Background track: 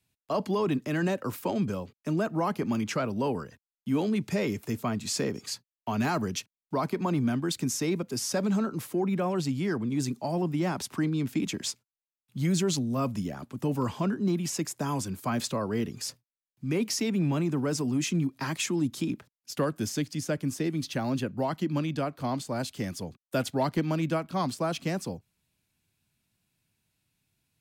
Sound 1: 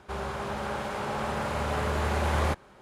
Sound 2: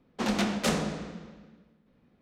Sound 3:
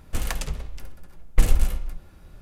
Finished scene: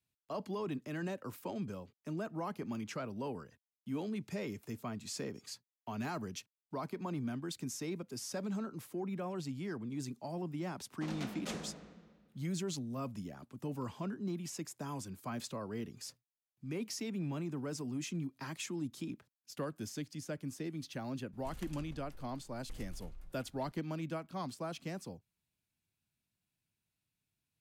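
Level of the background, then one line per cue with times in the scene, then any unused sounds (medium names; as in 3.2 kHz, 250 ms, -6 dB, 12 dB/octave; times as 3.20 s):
background track -11.5 dB
10.82 s: add 2 -15.5 dB
21.32 s: add 3 -16 dB, fades 0.02 s + compression 3:1, threshold -29 dBFS
not used: 1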